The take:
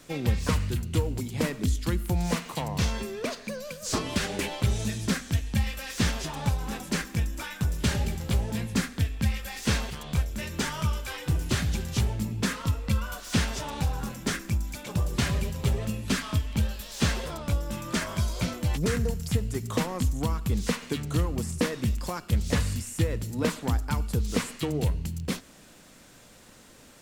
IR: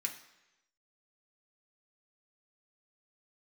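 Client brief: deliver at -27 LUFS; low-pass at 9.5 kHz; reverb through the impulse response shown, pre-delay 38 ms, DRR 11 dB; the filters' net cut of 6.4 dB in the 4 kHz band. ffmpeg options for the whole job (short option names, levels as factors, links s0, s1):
-filter_complex "[0:a]lowpass=9500,equalizer=f=4000:t=o:g=-8.5,asplit=2[s0][s1];[1:a]atrim=start_sample=2205,adelay=38[s2];[s1][s2]afir=irnorm=-1:irlink=0,volume=0.266[s3];[s0][s3]amix=inputs=2:normalize=0,volume=1.33"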